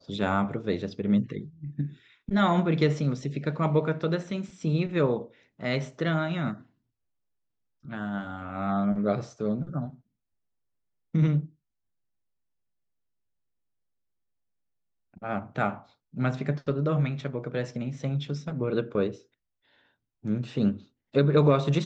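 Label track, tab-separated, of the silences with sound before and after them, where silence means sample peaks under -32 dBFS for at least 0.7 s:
6.530000	7.920000	silence
9.870000	11.150000	silence
11.450000	15.240000	silence
19.120000	20.250000	silence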